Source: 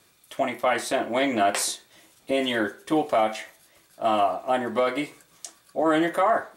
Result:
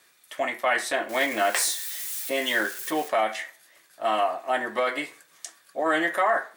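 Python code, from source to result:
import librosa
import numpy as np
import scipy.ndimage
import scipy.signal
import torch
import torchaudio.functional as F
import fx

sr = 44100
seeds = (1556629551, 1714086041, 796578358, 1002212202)

y = fx.crossing_spikes(x, sr, level_db=-27.5, at=(1.09, 3.09))
y = fx.highpass(y, sr, hz=590.0, slope=6)
y = fx.peak_eq(y, sr, hz=1800.0, db=7.5, octaves=0.42)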